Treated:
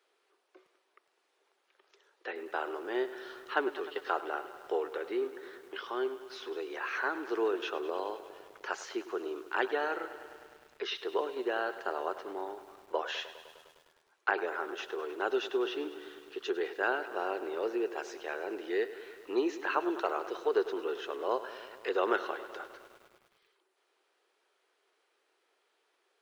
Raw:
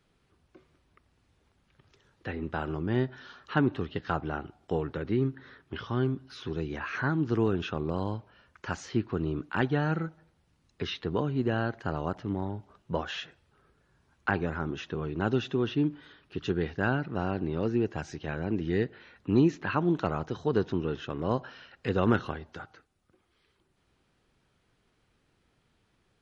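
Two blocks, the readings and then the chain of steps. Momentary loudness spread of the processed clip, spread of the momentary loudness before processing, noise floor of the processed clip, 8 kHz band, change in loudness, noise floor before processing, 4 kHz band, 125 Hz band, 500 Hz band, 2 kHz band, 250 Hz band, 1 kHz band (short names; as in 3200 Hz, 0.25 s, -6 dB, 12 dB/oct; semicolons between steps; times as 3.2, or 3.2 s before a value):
13 LU, 11 LU, -76 dBFS, n/a, -4.0 dB, -72 dBFS, -0.5 dB, under -40 dB, -0.5 dB, 0.0 dB, -10.0 dB, 0.0 dB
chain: elliptic high-pass 380 Hz, stop band 80 dB; lo-fi delay 0.102 s, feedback 80%, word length 9-bit, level -14.5 dB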